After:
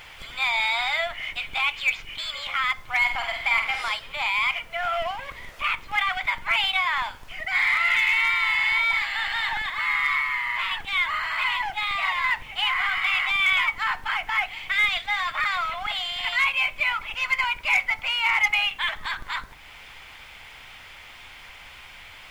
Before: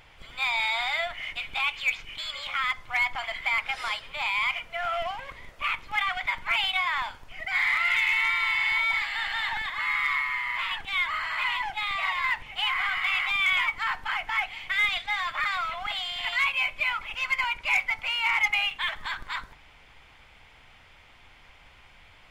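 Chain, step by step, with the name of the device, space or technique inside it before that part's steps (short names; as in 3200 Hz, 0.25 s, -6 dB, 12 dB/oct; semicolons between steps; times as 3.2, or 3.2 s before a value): 2.98–3.82 flutter echo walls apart 8.2 m, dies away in 0.48 s; noise-reduction cassette on a plain deck (mismatched tape noise reduction encoder only; wow and flutter 24 cents; white noise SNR 38 dB); gain +3 dB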